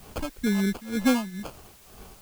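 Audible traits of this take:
phaser sweep stages 6, 3.1 Hz, lowest notch 410–2,100 Hz
aliases and images of a low sample rate 1,900 Hz, jitter 0%
tremolo triangle 2.1 Hz, depth 90%
a quantiser's noise floor 10 bits, dither triangular

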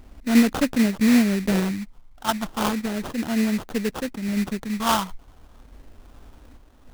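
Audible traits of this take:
sample-and-hold tremolo
a quantiser's noise floor 12 bits, dither none
phaser sweep stages 6, 0.34 Hz, lowest notch 430–2,200 Hz
aliases and images of a low sample rate 2,200 Hz, jitter 20%

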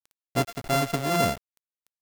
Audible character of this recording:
a buzz of ramps at a fixed pitch in blocks of 64 samples
tremolo triangle 3.4 Hz, depth 55%
a quantiser's noise floor 8 bits, dither none

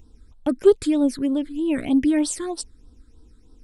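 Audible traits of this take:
phaser sweep stages 8, 3.2 Hz, lowest notch 780–2,200 Hz

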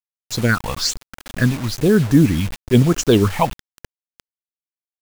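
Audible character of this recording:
tremolo saw up 0.75 Hz, depth 30%
phaser sweep stages 6, 1.1 Hz, lowest notch 390–3,800 Hz
a quantiser's noise floor 6 bits, dither none

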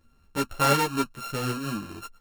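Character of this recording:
a buzz of ramps at a fixed pitch in blocks of 32 samples
tremolo saw up 1.9 Hz, depth 40%
a shimmering, thickened sound

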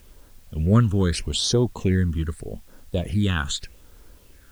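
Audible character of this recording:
phaser sweep stages 8, 0.81 Hz, lowest notch 630–2,500 Hz
a quantiser's noise floor 10 bits, dither triangular

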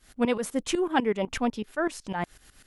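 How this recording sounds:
tremolo saw up 8 Hz, depth 85%

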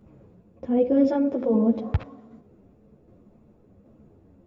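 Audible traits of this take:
tremolo saw down 1.3 Hz, depth 30%
a shimmering, thickened sound

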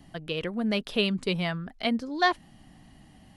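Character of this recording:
background noise floor −55 dBFS
spectral slope −3.0 dB per octave

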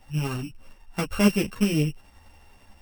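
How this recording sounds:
a buzz of ramps at a fixed pitch in blocks of 16 samples
tremolo saw up 11 Hz, depth 35%
a shimmering, thickened sound

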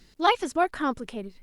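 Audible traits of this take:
a quantiser's noise floor 12 bits, dither none
Opus

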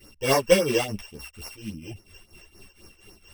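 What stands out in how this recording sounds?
a buzz of ramps at a fixed pitch in blocks of 16 samples
phaser sweep stages 12, 3.6 Hz, lowest notch 210–3,400 Hz
tremolo triangle 4.3 Hz, depth 85%
a shimmering, thickened sound

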